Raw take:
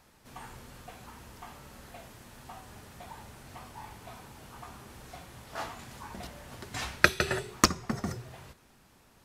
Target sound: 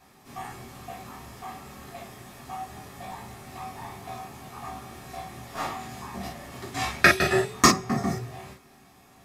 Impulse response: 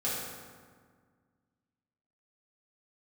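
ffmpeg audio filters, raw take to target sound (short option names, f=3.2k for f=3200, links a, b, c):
-filter_complex "[0:a]asettb=1/sr,asplit=3[a][b][c];[a]atrim=end=3.014[d];[b]atrim=start=3.01:end=5.75,asetpts=PTS-STARTPTS,afade=t=in:d=0.004:c=qsin,afade=t=out:st=2.736:d=0.004:c=qsin,aeval=exprs='0.0794*(cos(1*acos(clip(val(0)/0.0794,-1,1)))-cos(1*PI/2))+0.00501*(cos(8*acos(clip(val(0)/0.0794,-1,1)))-cos(8*PI/2))':c=same[e];[c]atrim=start=5.746[f];[d][e]acrossfade=d=0.004:c1=hsin:c2=qsin[g];[g][f]acrossfade=d=0.004:c1=qsin:c2=hsin[h];[1:a]atrim=start_sample=2205,atrim=end_sample=4410,asetrate=66150,aresample=44100[i];[h][i]afir=irnorm=-1:irlink=0,volume=4.5dB"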